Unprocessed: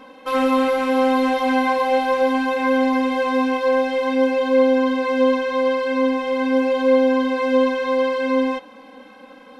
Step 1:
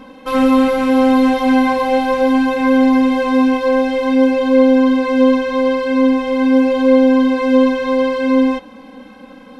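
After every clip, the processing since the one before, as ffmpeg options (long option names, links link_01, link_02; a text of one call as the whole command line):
ffmpeg -i in.wav -af "bass=frequency=250:gain=14,treble=frequency=4000:gain=2,volume=2dB" out.wav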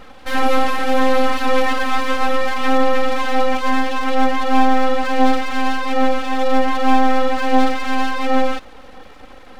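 ffmpeg -i in.wav -af "aeval=exprs='abs(val(0))':channel_layout=same" out.wav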